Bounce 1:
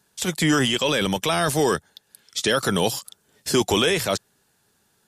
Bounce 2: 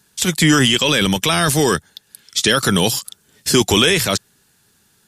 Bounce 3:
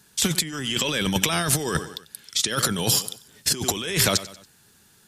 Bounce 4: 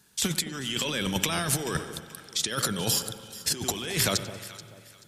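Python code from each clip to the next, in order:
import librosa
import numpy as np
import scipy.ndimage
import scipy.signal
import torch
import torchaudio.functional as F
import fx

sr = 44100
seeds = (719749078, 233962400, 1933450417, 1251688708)

y1 = fx.peak_eq(x, sr, hz=650.0, db=-7.5, octaves=1.7)
y1 = F.gain(torch.from_numpy(y1), 8.5).numpy()
y2 = fx.echo_feedback(y1, sr, ms=94, feedback_pct=45, wet_db=-20)
y2 = fx.over_compress(y2, sr, threshold_db=-19.0, ratio=-0.5)
y2 = F.gain(torch.from_numpy(y2), -3.5).numpy()
y3 = fx.echo_alternate(y2, sr, ms=216, hz=950.0, feedback_pct=54, wet_db=-11.5)
y3 = fx.rev_spring(y3, sr, rt60_s=2.3, pass_ms=(45,), chirp_ms=70, drr_db=13.0)
y3 = F.gain(torch.from_numpy(y3), -5.0).numpy()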